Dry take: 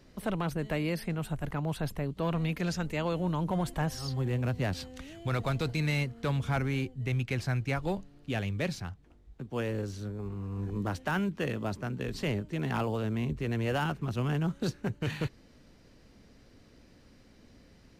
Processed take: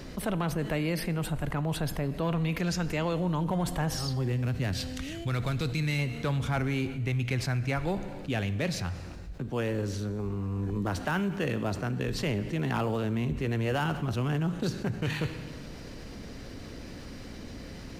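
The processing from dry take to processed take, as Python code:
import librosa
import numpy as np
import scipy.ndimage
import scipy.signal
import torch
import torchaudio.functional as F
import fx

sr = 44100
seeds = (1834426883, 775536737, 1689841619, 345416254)

y = fx.peak_eq(x, sr, hz=750.0, db=-6.5, octaves=1.9, at=(4.32, 5.99))
y = fx.rev_plate(y, sr, seeds[0], rt60_s=1.2, hf_ratio=1.0, predelay_ms=0, drr_db=14.0)
y = fx.env_flatten(y, sr, amount_pct=50)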